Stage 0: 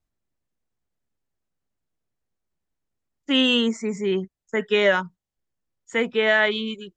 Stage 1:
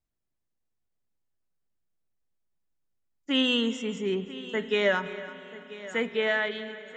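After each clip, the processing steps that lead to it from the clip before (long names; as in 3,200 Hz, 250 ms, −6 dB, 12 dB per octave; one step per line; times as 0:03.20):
fade-out on the ending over 0.81 s
echo machine with several playback heads 329 ms, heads first and third, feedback 40%, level −17.5 dB
spring reverb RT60 3.3 s, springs 34 ms, chirp 40 ms, DRR 13.5 dB
level −5.5 dB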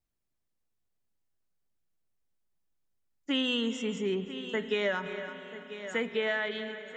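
downward compressor 3 to 1, threshold −27 dBFS, peak gain reduction 6.5 dB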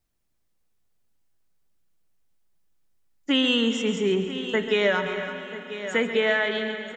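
repeating echo 137 ms, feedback 56%, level −11.5 dB
level +7.5 dB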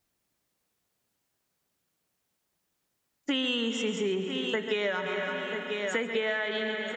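high-pass filter 200 Hz 6 dB per octave
downward compressor 4 to 1, threshold −32 dBFS, peak gain reduction 12 dB
level +4 dB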